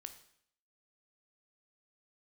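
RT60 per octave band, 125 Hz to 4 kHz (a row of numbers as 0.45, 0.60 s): 0.65, 0.70, 0.65, 0.65, 0.65, 0.65 s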